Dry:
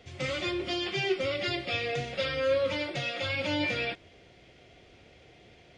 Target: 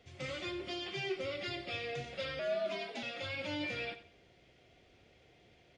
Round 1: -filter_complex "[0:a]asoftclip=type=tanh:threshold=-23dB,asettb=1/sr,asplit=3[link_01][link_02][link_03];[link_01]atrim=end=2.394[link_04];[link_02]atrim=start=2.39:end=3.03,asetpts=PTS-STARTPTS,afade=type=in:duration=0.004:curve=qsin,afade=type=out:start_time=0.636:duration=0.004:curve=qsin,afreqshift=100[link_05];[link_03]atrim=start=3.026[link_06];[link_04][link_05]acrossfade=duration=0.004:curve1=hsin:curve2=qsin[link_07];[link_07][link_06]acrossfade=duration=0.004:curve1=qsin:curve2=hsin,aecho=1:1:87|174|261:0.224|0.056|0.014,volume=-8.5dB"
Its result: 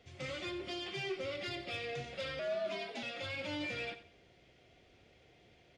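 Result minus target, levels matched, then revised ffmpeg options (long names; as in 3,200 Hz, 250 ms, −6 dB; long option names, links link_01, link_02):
soft clipping: distortion +11 dB
-filter_complex "[0:a]asoftclip=type=tanh:threshold=-16dB,asettb=1/sr,asplit=3[link_01][link_02][link_03];[link_01]atrim=end=2.394[link_04];[link_02]atrim=start=2.39:end=3.03,asetpts=PTS-STARTPTS,afade=type=in:duration=0.004:curve=qsin,afade=type=out:start_time=0.636:duration=0.004:curve=qsin,afreqshift=100[link_05];[link_03]atrim=start=3.026[link_06];[link_04][link_05]acrossfade=duration=0.004:curve1=hsin:curve2=qsin[link_07];[link_07][link_06]acrossfade=duration=0.004:curve1=qsin:curve2=hsin,aecho=1:1:87|174|261:0.224|0.056|0.014,volume=-8.5dB"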